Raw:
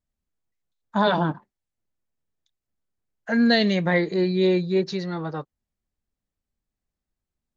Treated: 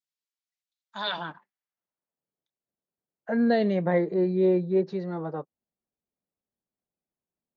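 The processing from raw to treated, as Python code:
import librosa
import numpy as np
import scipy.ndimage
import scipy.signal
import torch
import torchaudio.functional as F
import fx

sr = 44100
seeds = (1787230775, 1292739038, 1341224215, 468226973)

y = fx.peak_eq(x, sr, hz=170.0, db=5.5, octaves=0.69)
y = fx.filter_sweep_bandpass(y, sr, from_hz=4400.0, to_hz=530.0, start_s=0.92, end_s=2.3, q=1.0)
y = fx.high_shelf(y, sr, hz=3800.0, db=-6.0, at=(3.98, 4.77))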